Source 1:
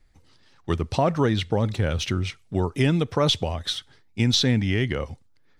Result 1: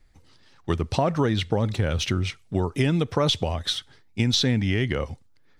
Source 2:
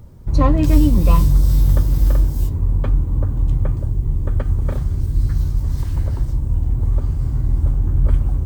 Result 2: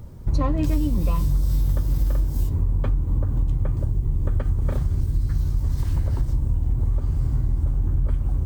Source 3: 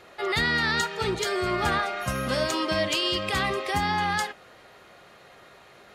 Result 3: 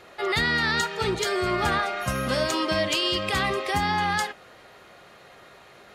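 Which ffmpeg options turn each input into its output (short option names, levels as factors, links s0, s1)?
-af "acompressor=threshold=0.112:ratio=6,volume=1.19"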